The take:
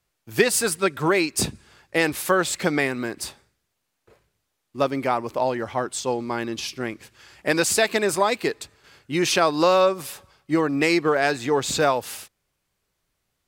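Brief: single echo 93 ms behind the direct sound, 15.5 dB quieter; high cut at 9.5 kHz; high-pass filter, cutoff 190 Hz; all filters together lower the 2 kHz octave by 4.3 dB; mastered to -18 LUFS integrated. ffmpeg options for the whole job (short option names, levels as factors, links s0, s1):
-af "highpass=190,lowpass=9500,equalizer=f=2000:t=o:g=-5.5,aecho=1:1:93:0.168,volume=2"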